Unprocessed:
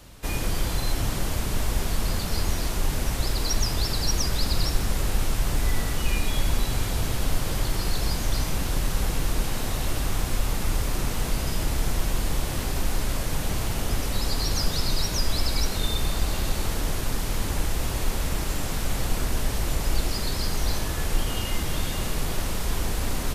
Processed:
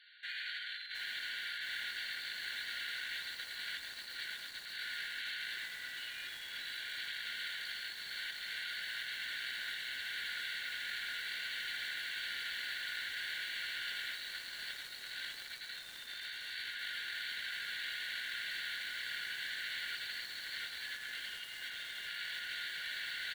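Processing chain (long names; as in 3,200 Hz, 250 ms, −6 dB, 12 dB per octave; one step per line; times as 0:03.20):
high-shelf EQ 3,100 Hz −9.5 dB
on a send: single-tap delay 82 ms −3.5 dB
on the sum: brick-wall band-pass 1,400–4,600 Hz
in parallel at −10 dB: dead-zone distortion −51.5 dBFS
on the sum: notch filter 2,500 Hz, Q 6.2
compressor whose output falls as the input rises −42 dBFS, ratio −0.5
feedback echo at a low word length 714 ms, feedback 80%, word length 8 bits, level −6 dB
level −1 dB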